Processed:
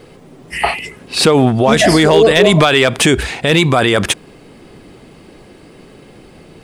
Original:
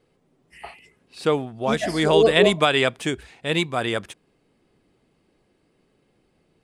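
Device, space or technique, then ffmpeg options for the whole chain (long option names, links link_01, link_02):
loud club master: -af "acompressor=threshold=-20dB:ratio=2.5,asoftclip=type=hard:threshold=-14dB,alimiter=level_in=26dB:limit=-1dB:release=50:level=0:latency=1,volume=-1dB"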